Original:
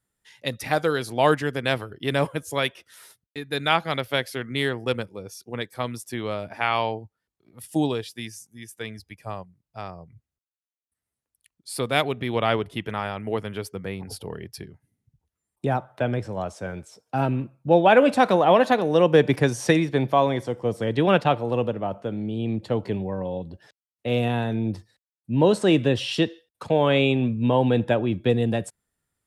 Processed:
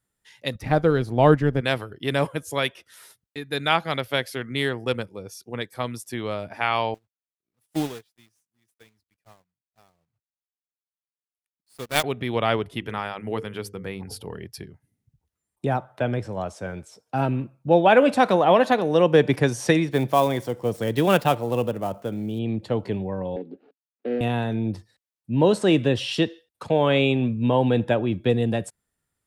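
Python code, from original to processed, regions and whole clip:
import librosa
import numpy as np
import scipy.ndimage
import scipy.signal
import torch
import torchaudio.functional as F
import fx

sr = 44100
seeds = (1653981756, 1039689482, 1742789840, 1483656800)

y = fx.chain(x, sr, fx.law_mismatch(coded='A'),
    fx.tilt_eq(slope=-3.5), at=(0.55, 1.61))
y = fx.chain(y, sr, fx.block_float(bits=3),
    fx.upward_expand(threshold_db=-38.0, expansion=2.5), at=(6.94, 12.04))
y = fx.chain(y, sr, fx.peak_eq(hz=630.0, db=-4.0, octaves=0.31),
    fx.hum_notches(base_hz=50, count=10), at=(12.79, 14.37))
y = fx.chain(y, sr, fx.dead_time(dead_ms=0.056),
    fx.high_shelf(hz=7700.0, db=8.0), at=(19.91, 22.39))
y = fx.chain(y, sr, fx.median_filter(points=25),
    fx.cabinet(low_hz=230.0, low_slope=24, high_hz=3500.0, hz=(270.0, 420.0, 600.0, 1000.0, 2100.0, 3200.0), db=(7, 8, -6, -10, -3, -5)),
    fx.band_squash(depth_pct=40), at=(23.36, 24.21))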